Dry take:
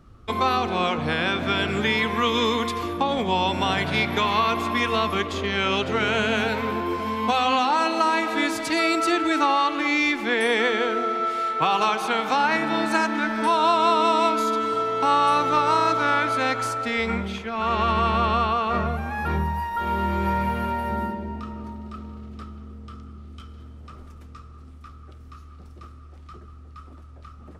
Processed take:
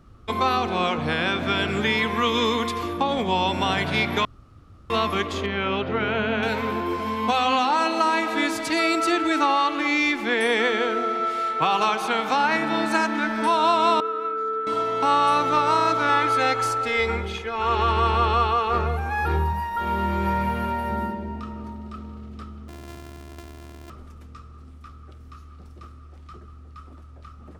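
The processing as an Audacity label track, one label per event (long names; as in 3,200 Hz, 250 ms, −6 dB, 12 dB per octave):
4.250000	4.900000	fill with room tone
5.460000	6.430000	high-frequency loss of the air 300 metres
14.000000	14.670000	pair of resonant band-passes 800 Hz, apart 1.6 octaves
16.090000	19.530000	comb filter 2.4 ms
22.680000	23.900000	samples sorted by size in blocks of 128 samples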